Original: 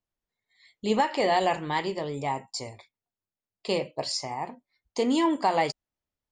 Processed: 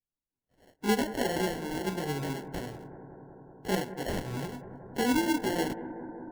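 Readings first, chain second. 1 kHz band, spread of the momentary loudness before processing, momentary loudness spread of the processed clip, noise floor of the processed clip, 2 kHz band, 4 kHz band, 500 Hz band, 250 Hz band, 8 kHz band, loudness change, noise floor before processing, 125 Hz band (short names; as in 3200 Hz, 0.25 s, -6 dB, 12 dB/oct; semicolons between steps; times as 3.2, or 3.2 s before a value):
-8.5 dB, 13 LU, 17 LU, under -85 dBFS, -2.0 dB, -5.0 dB, -4.5 dB, -0.5 dB, -0.5 dB, -4.5 dB, under -85 dBFS, +2.5 dB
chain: bin magnitudes rounded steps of 30 dB; spectral noise reduction 12 dB; band shelf 1200 Hz -11.5 dB 2.3 oct; in parallel at -1 dB: compressor, threshold -36 dBFS, peak gain reduction 14.5 dB; on the sum: chorus voices 6, 0.93 Hz, delay 20 ms, depth 4.4 ms; sample-and-hold 36×; on a send: analogue delay 0.186 s, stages 2048, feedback 82%, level -14 dB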